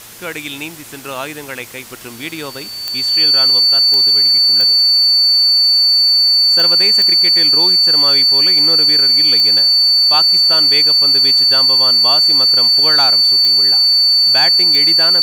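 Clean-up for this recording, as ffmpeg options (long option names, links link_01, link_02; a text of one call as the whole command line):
ffmpeg -i in.wav -af "adeclick=threshold=4,bandreject=frequency=114.2:width_type=h:width=4,bandreject=frequency=228.4:width_type=h:width=4,bandreject=frequency=342.6:width_type=h:width=4,bandreject=frequency=456.8:width_type=h:width=4,bandreject=frequency=4500:width=30,afftdn=noise_reduction=30:noise_floor=-28" out.wav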